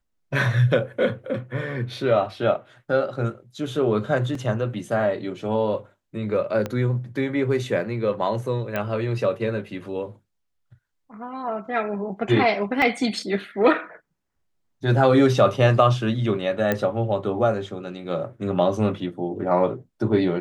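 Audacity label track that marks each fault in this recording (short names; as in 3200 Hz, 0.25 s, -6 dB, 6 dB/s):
4.350000	4.350000	gap 3 ms
6.660000	6.660000	pop -14 dBFS
8.760000	8.760000	pop -13 dBFS
12.820000	12.820000	gap 2.1 ms
16.720000	16.720000	pop -9 dBFS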